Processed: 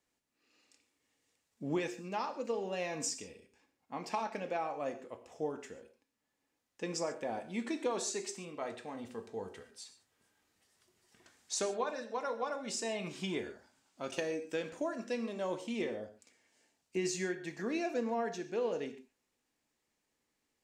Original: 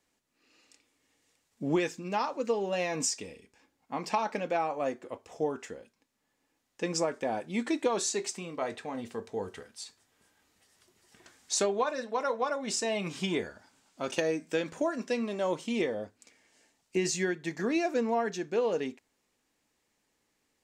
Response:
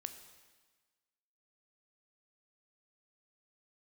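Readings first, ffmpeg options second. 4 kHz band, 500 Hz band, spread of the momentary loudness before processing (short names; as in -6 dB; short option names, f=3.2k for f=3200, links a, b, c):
-6.5 dB, -6.0 dB, 10 LU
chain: -filter_complex "[1:a]atrim=start_sample=2205,atrim=end_sample=6615[a];[0:a][a]afir=irnorm=-1:irlink=0,volume=-3dB"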